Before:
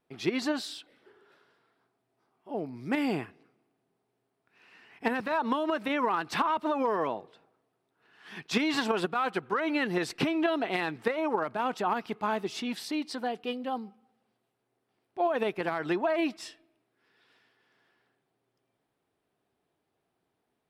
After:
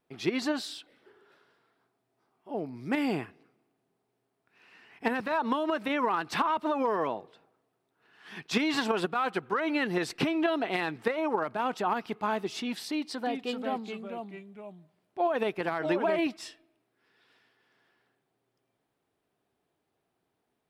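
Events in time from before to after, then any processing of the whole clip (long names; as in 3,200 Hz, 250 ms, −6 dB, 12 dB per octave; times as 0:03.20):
0:12.90–0:16.27: delay with pitch and tempo change per echo 357 ms, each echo −2 semitones, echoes 2, each echo −6 dB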